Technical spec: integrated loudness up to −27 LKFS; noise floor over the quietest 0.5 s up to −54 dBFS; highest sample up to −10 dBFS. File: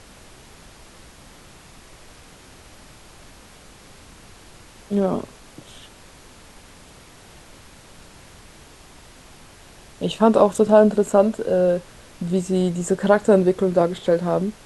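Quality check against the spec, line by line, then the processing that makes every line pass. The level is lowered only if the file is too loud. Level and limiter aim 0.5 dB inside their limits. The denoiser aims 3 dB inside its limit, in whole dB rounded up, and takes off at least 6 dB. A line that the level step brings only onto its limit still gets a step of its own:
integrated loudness −19.5 LKFS: out of spec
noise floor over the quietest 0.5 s −46 dBFS: out of spec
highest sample −1.5 dBFS: out of spec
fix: broadband denoise 6 dB, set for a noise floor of −46 dBFS
level −8 dB
brickwall limiter −10.5 dBFS

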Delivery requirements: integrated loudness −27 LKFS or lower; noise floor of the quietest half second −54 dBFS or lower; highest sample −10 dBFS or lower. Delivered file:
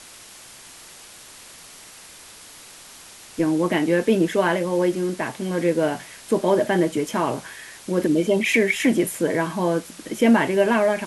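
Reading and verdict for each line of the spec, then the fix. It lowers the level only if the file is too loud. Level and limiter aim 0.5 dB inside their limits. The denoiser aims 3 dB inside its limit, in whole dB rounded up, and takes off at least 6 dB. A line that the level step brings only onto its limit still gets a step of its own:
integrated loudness −21.5 LKFS: out of spec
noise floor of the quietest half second −44 dBFS: out of spec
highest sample −6.0 dBFS: out of spec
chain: broadband denoise 7 dB, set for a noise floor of −44 dBFS
level −6 dB

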